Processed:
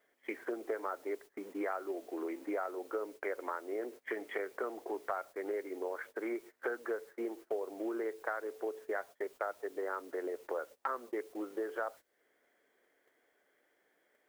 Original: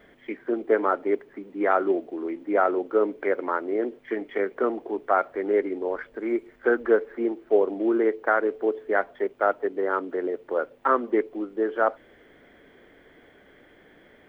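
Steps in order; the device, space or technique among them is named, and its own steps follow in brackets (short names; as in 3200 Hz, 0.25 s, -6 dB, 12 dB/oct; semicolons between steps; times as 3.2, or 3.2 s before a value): baby monitor (BPF 450–3000 Hz; compressor 6:1, threshold -38 dBFS, peak gain reduction 19.5 dB; white noise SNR 25 dB; gate -52 dBFS, range -20 dB); gain +2.5 dB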